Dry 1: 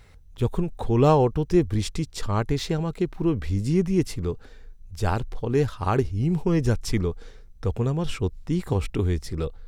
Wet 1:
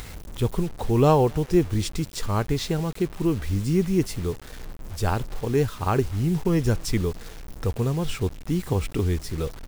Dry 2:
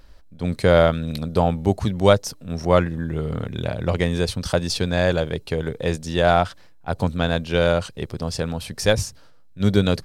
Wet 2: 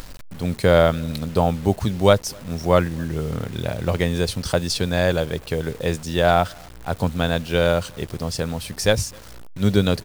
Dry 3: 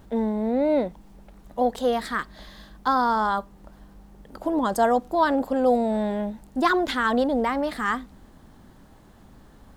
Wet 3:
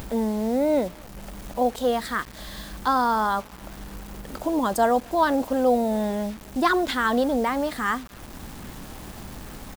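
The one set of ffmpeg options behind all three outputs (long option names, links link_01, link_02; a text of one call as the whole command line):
ffmpeg -i in.wav -filter_complex "[0:a]highshelf=frequency=7900:gain=4.5,acompressor=mode=upward:threshold=-28dB:ratio=2.5,asplit=2[link_01][link_02];[link_02]adelay=256.6,volume=-29dB,highshelf=frequency=4000:gain=-5.77[link_03];[link_01][link_03]amix=inputs=2:normalize=0,aeval=exprs='val(0)+0.00355*(sin(2*PI*60*n/s)+sin(2*PI*2*60*n/s)/2+sin(2*PI*3*60*n/s)/3+sin(2*PI*4*60*n/s)/4+sin(2*PI*5*60*n/s)/5)':channel_layout=same,acrusher=bits=6:mix=0:aa=0.000001" out.wav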